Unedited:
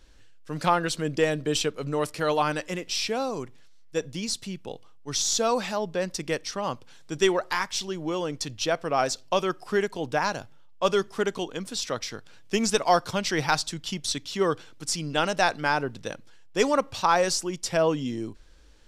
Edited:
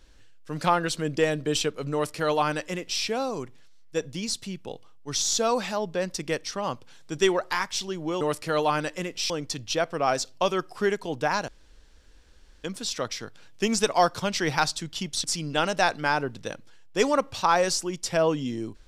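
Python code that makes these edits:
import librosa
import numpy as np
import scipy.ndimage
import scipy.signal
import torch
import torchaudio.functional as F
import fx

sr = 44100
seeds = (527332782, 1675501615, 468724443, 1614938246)

y = fx.edit(x, sr, fx.duplicate(start_s=1.93, length_s=1.09, to_s=8.21),
    fx.room_tone_fill(start_s=10.39, length_s=1.16),
    fx.cut(start_s=14.15, length_s=0.69), tone=tone)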